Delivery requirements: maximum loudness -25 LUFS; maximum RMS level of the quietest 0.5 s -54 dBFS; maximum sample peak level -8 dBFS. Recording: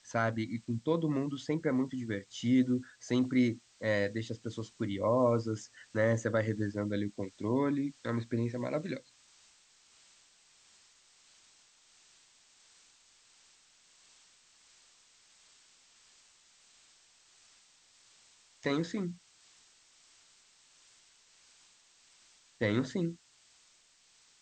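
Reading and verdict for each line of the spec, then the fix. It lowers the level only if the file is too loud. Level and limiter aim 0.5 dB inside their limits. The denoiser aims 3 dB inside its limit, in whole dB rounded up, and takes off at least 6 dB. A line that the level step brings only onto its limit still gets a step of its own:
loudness -33.0 LUFS: OK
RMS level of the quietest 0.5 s -66 dBFS: OK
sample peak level -16.0 dBFS: OK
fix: none

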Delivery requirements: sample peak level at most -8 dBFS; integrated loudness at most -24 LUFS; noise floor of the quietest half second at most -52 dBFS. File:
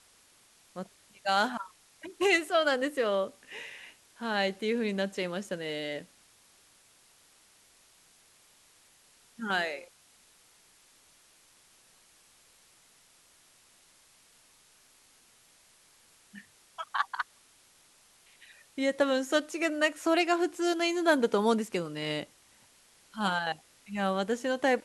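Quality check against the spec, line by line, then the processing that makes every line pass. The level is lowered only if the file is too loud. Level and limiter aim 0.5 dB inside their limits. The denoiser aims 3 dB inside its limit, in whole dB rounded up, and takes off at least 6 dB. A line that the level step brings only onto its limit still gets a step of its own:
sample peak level -12.0 dBFS: OK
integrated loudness -30.0 LUFS: OK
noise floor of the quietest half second -62 dBFS: OK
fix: none

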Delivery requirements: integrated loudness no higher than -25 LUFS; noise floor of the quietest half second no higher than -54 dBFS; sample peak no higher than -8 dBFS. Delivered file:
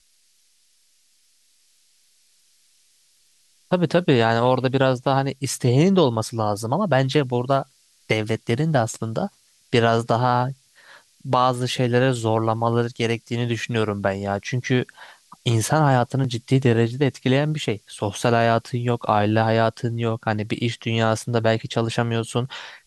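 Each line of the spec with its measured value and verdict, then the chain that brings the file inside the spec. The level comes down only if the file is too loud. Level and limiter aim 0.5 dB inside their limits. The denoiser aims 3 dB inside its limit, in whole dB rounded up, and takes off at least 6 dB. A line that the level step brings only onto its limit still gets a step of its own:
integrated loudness -21.5 LUFS: fail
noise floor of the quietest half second -61 dBFS: OK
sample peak -5.0 dBFS: fail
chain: gain -4 dB

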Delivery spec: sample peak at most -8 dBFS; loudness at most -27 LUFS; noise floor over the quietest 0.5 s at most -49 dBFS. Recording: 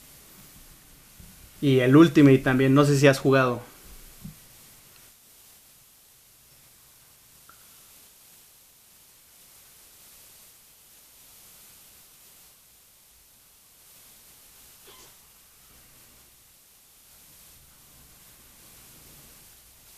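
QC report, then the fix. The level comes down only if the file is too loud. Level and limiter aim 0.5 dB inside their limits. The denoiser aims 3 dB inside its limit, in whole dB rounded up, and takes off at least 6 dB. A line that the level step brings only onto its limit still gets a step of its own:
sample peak -4.5 dBFS: fail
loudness -19.0 LUFS: fail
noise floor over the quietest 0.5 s -56 dBFS: OK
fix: gain -8.5 dB

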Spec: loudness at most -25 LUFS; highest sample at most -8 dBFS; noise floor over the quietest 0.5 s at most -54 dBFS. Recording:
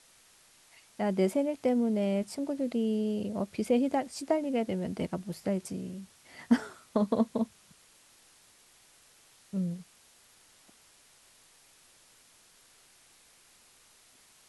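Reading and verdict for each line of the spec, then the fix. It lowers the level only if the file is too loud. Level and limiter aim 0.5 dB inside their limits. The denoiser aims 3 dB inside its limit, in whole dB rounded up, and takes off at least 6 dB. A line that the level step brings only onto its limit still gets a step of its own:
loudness -31.0 LUFS: OK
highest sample -12.0 dBFS: OK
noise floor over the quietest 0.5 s -61 dBFS: OK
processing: none

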